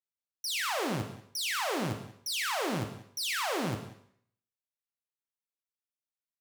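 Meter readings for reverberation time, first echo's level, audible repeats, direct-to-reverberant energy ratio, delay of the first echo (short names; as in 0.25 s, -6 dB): 0.60 s, -17.0 dB, 2, 4.5 dB, 0.137 s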